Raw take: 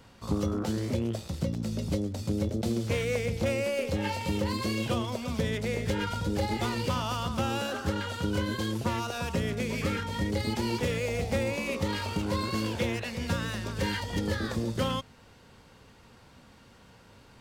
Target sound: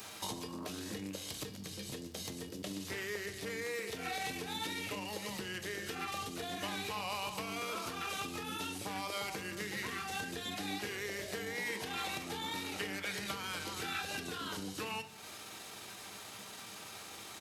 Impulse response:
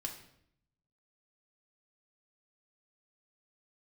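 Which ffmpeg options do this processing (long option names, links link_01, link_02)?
-filter_complex "[0:a]asetrate=37084,aresample=44100,atempo=1.18921,acrossover=split=3900[link_01][link_02];[link_02]acompressor=threshold=-52dB:ratio=4:attack=1:release=60[link_03];[link_01][link_03]amix=inputs=2:normalize=0,highpass=67,acompressor=threshold=-43dB:ratio=5,aemphasis=mode=production:type=riaa,asplit=2[link_04][link_05];[1:a]atrim=start_sample=2205[link_06];[link_05][link_06]afir=irnorm=-1:irlink=0,volume=1.5dB[link_07];[link_04][link_07]amix=inputs=2:normalize=0,volume=1.5dB"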